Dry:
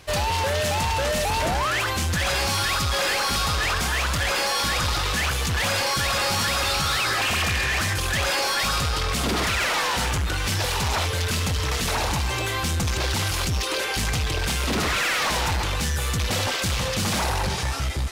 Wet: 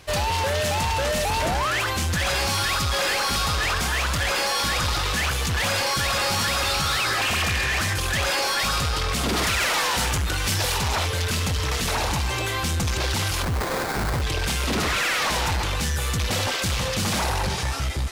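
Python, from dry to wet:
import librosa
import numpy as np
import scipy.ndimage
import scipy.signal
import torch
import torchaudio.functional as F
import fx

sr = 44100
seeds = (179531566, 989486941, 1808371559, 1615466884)

y = fx.high_shelf(x, sr, hz=5600.0, db=5.0, at=(9.33, 10.78))
y = fx.sample_hold(y, sr, seeds[0], rate_hz=3000.0, jitter_pct=20, at=(13.42, 14.21), fade=0.02)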